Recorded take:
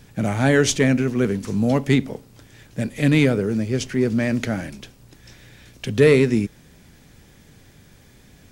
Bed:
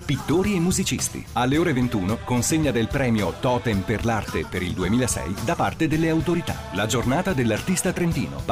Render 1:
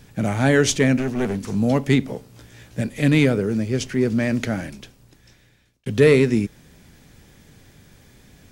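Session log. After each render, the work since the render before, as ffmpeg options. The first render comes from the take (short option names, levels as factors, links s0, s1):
-filter_complex "[0:a]asettb=1/sr,asplit=3[s0][s1][s2];[s0]atrim=end=0.984[s3];[s1]atrim=start=0.98:end=1.55,asetpts=PTS-STARTPTS,afade=t=in:d=0.004:c=qsin,afade=t=out:st=0.566:d=0.004:c=qsin,aeval=exprs='clip(val(0),-1,0.0794)':c=same[s4];[s2]atrim=start=1.546[s5];[s3][s4]acrossfade=d=0.004:c1=hsin:c2=qsin[s6];[s6][s5]acrossfade=d=0.004:c1=qsin:c2=hsin,asettb=1/sr,asplit=3[s7][s8][s9];[s7]atrim=end=2.074[s10];[s8]atrim=start=2.07:end=2.81,asetpts=PTS-STARTPTS,afade=t=in:d=0.004:c=qsin,afade=t=out:st=0.736:d=0.004:c=qsin,asplit=2[s11][s12];[s12]adelay=16,volume=0.708[s13];[s11][s13]amix=inputs=2:normalize=0,atrim=end_sample=32634[s14];[s9]atrim=start=2.806[s15];[s10][s14]acrossfade=d=0.004:c1=hsin:c2=qsin[s16];[s16][s15]acrossfade=d=0.004:c1=qsin:c2=hsin,asplit=2[s17][s18];[s17]atrim=end=5.86,asetpts=PTS-STARTPTS,afade=t=out:st=4.64:d=1.22[s19];[s18]atrim=start=5.86,asetpts=PTS-STARTPTS,afade=t=in:d=0.004:c=hsin[s20];[s19][s20]concat=n=2:v=0:a=1"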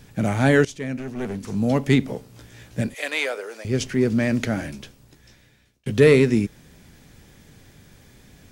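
-filter_complex "[0:a]asettb=1/sr,asplit=3[s0][s1][s2];[s0]atrim=end=2.944[s3];[s1]atrim=start=2.94:end=3.65,asetpts=PTS-STARTPTS,afade=t=in:d=0.004:c=qsin,afade=t=out:st=0.706:d=0.004:c=qsin,highpass=f=560:w=0.5412,highpass=f=560:w=1.3066[s4];[s2]atrim=start=3.646[s5];[s3][s4]acrossfade=d=0.004:c1=hsin:c2=qsin[s6];[s6][s5]acrossfade=d=0.004:c1=qsin:c2=hsin,asettb=1/sr,asplit=3[s7][s8][s9];[s7]atrim=end=4.554[s10];[s8]atrim=start=4.55:end=5.92,asetpts=PTS-STARTPTS,afade=t=in:d=0.004:c=qsin,afade=t=out:st=1.366:d=0.004:c=qsin,asplit=2[s11][s12];[s12]adelay=14,volume=0.447[s13];[s11][s13]amix=inputs=2:normalize=0,atrim=end_sample=60417[s14];[s9]atrim=start=5.916[s15];[s10][s14]acrossfade=d=0.004:c1=hsin:c2=qsin[s16];[s16][s15]acrossfade=d=0.004:c1=qsin:c2=hsin,asplit=2[s17][s18];[s17]atrim=end=0.65,asetpts=PTS-STARTPTS,afade=t=out:st=0.646:d=0.004:c=hsin:silence=0.112202[s19];[s18]atrim=start=0.65,asetpts=PTS-STARTPTS,afade=t=in:d=1.29:silence=0.112202[s20];[s19][s20]concat=n=2:v=0:a=1"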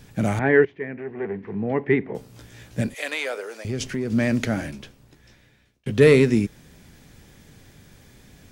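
-filter_complex "[0:a]asettb=1/sr,asplit=3[s0][s1][s2];[s0]atrim=end=0.394[s3];[s1]atrim=start=0.39:end=2.15,asetpts=PTS-STARTPTS,afade=t=in:d=0.004:c=qsin,afade=t=out:st=1.756:d=0.004:c=qsin,highpass=130,equalizer=f=140:t=q:w=4:g=-6,equalizer=f=250:t=q:w=4:g=-8,equalizer=f=400:t=q:w=4:g=6,equalizer=f=580:t=q:w=4:g=-7,equalizer=f=1300:t=q:w=4:g=-7,equalizer=f=1900:t=q:w=4:g=6,lowpass=f=2100:w=0.5412,lowpass=f=2100:w=1.3066[s4];[s2]atrim=start=2.146[s5];[s3][s4]acrossfade=d=0.004:c1=hsin:c2=qsin[s6];[s6][s5]acrossfade=d=0.004:c1=qsin:c2=hsin,asettb=1/sr,asplit=3[s7][s8][s9];[s7]atrim=end=3.014[s10];[s8]atrim=start=3.01:end=4.13,asetpts=PTS-STARTPTS,afade=t=in:d=0.004:c=qsin,afade=t=out:st=1.116:d=0.004:c=qsin,acompressor=threshold=0.0794:ratio=6:attack=3.2:release=140:knee=1:detection=peak[s11];[s9]atrim=start=4.126[s12];[s10][s11]acrossfade=d=0.004:c1=hsin:c2=qsin[s13];[s13][s12]acrossfade=d=0.004:c1=qsin:c2=hsin,asettb=1/sr,asplit=3[s14][s15][s16];[s14]atrim=end=4.714[s17];[s15]atrim=start=4.71:end=6.01,asetpts=PTS-STARTPTS,afade=t=in:d=0.004:c=qsin,afade=t=out:st=1.296:d=0.004:c=qsin,bass=f=250:g=-1,treble=f=4000:g=-5[s18];[s16]atrim=start=6.006[s19];[s17][s18]acrossfade=d=0.004:c1=hsin:c2=qsin[s20];[s20][s19]acrossfade=d=0.004:c1=qsin:c2=hsin"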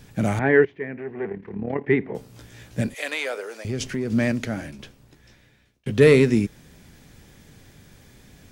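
-filter_complex "[0:a]asettb=1/sr,asplit=3[s0][s1][s2];[s0]atrim=end=1.294[s3];[s1]atrim=start=1.29:end=1.88,asetpts=PTS-STARTPTS,afade=t=in:d=0.004:c=qsin,afade=t=out:st=0.586:d=0.004:c=qsin,tremolo=f=36:d=0.71[s4];[s2]atrim=start=1.876[s5];[s3][s4]acrossfade=d=0.004:c1=hsin:c2=qsin[s6];[s6][s5]acrossfade=d=0.004:c1=qsin:c2=hsin,asplit=3[s7][s8][s9];[s7]atrim=end=4.322[s10];[s8]atrim=start=4.318:end=4.792,asetpts=PTS-STARTPTS,volume=0.631[s11];[s9]atrim=start=4.788[s12];[s10][s11]acrossfade=d=0.004:c1=hsin:c2=hsin[s13];[s13][s12]acrossfade=d=0.004:c1=hsin:c2=hsin"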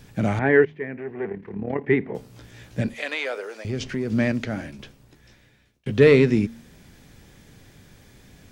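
-filter_complex "[0:a]acrossover=split=5800[s0][s1];[s1]acompressor=threshold=0.00112:ratio=4:attack=1:release=60[s2];[s0][s2]amix=inputs=2:normalize=0,bandreject=f=76.68:t=h:w=4,bandreject=f=153.36:t=h:w=4,bandreject=f=230.04:t=h:w=4"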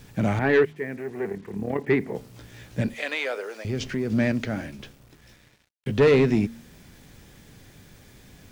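-af "acrusher=bits=8:mix=0:aa=0.5,asoftclip=type=tanh:threshold=0.266"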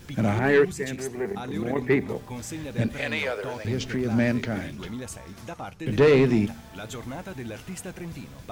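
-filter_complex "[1:a]volume=0.188[s0];[0:a][s0]amix=inputs=2:normalize=0"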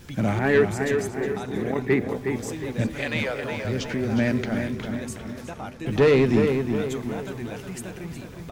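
-filter_complex "[0:a]asplit=2[s0][s1];[s1]adelay=363,lowpass=f=3100:p=1,volume=0.531,asplit=2[s2][s3];[s3]adelay=363,lowpass=f=3100:p=1,volume=0.48,asplit=2[s4][s5];[s5]adelay=363,lowpass=f=3100:p=1,volume=0.48,asplit=2[s6][s7];[s7]adelay=363,lowpass=f=3100:p=1,volume=0.48,asplit=2[s8][s9];[s9]adelay=363,lowpass=f=3100:p=1,volume=0.48,asplit=2[s10][s11];[s11]adelay=363,lowpass=f=3100:p=1,volume=0.48[s12];[s0][s2][s4][s6][s8][s10][s12]amix=inputs=7:normalize=0"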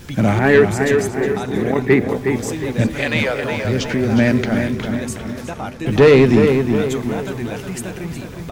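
-af "volume=2.51,alimiter=limit=0.708:level=0:latency=1"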